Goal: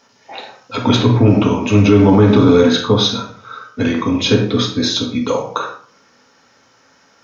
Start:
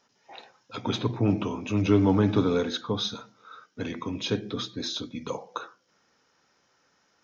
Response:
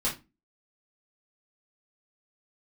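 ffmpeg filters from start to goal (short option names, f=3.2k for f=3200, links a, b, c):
-filter_complex "[0:a]asplit=2[a][b];[b]highpass=100[c];[1:a]atrim=start_sample=2205,asetrate=22050,aresample=44100[d];[c][d]afir=irnorm=-1:irlink=0,volume=-11dB[e];[a][e]amix=inputs=2:normalize=0,alimiter=level_in=11.5dB:limit=-1dB:release=50:level=0:latency=1,volume=-1dB"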